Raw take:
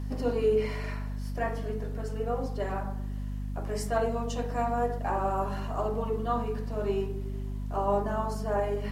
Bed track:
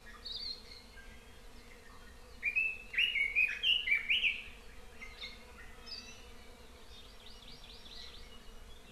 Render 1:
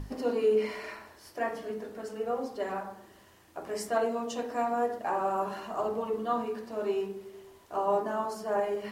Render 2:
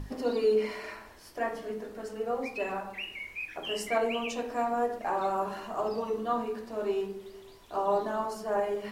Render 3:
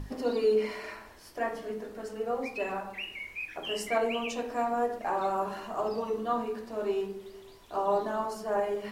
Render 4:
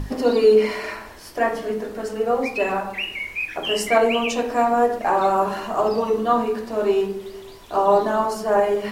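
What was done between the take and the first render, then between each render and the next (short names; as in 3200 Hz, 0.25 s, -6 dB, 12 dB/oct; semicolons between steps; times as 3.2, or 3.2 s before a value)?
notches 50/100/150/200/250 Hz
add bed track -8 dB
nothing audible
gain +11 dB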